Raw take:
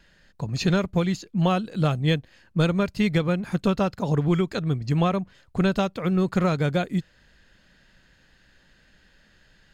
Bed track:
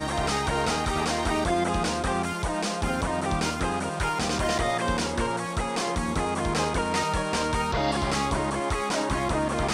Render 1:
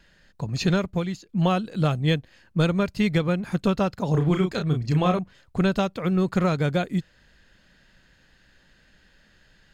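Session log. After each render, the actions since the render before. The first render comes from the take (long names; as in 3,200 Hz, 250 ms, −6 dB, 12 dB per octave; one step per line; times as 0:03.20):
0:00.71–0:01.29: fade out, to −9 dB
0:04.11–0:05.19: double-tracking delay 33 ms −5 dB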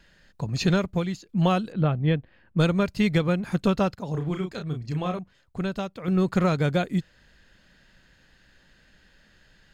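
0:01.72–0:02.57: high-frequency loss of the air 420 metres
0:03.95–0:06.08: clip gain −7 dB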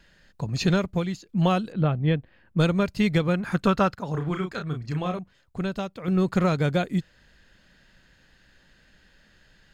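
0:03.34–0:04.99: parametric band 1,400 Hz +8 dB 1.1 octaves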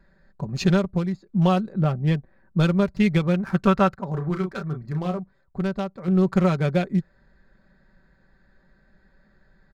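adaptive Wiener filter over 15 samples
comb filter 5.2 ms, depth 49%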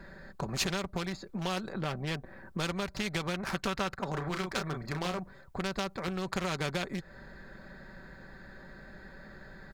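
downward compressor 6 to 1, threshold −25 dBFS, peak gain reduction 11 dB
every bin compressed towards the loudest bin 2 to 1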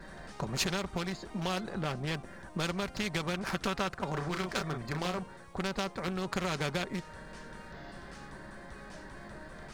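mix in bed track −24.5 dB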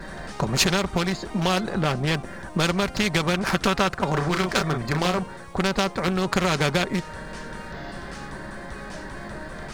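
level +11 dB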